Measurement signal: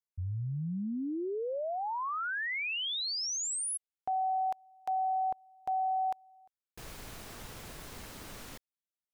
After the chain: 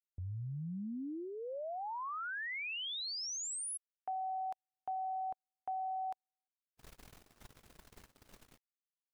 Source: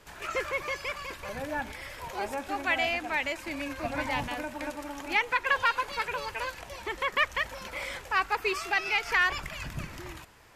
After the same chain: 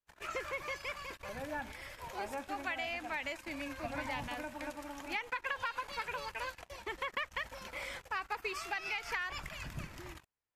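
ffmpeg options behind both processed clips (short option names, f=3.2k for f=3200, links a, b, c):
-af "agate=range=-34dB:threshold=-48dB:ratio=16:release=25:detection=peak,adynamicequalizer=threshold=0.00316:dfrequency=400:dqfactor=3.2:tfrequency=400:tqfactor=3.2:attack=5:release=100:ratio=0.375:range=2.5:mode=cutabove:tftype=bell,acompressor=threshold=-32dB:ratio=6:attack=84:release=125:knee=1:detection=rms,volume=-6dB"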